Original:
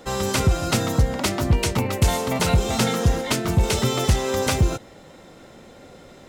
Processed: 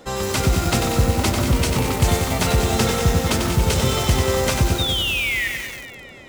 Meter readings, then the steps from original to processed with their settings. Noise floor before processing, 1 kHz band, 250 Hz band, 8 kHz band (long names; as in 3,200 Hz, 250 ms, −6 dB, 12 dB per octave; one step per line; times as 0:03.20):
−47 dBFS, +2.5 dB, +2.0 dB, +3.0 dB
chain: sound drawn into the spectrogram fall, 0:04.78–0:05.48, 1,800–3,800 Hz −24 dBFS
delay that swaps between a low-pass and a high-pass 105 ms, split 1,600 Hz, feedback 78%, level −8.5 dB
feedback echo at a low word length 94 ms, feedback 80%, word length 5 bits, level −4 dB